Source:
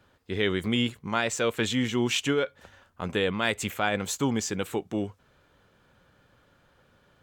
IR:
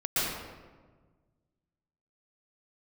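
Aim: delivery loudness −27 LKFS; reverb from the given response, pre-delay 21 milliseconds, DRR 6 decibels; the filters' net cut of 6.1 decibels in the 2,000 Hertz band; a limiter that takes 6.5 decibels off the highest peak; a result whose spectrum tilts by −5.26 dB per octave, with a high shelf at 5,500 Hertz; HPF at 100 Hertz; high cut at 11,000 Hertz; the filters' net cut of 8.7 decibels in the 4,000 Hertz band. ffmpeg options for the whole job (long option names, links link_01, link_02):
-filter_complex "[0:a]highpass=100,lowpass=11000,equalizer=frequency=2000:width_type=o:gain=-5.5,equalizer=frequency=4000:width_type=o:gain=-8,highshelf=frequency=5500:gain=-4,alimiter=limit=-20dB:level=0:latency=1,asplit=2[link_01][link_02];[1:a]atrim=start_sample=2205,adelay=21[link_03];[link_02][link_03]afir=irnorm=-1:irlink=0,volume=-16.5dB[link_04];[link_01][link_04]amix=inputs=2:normalize=0,volume=4dB"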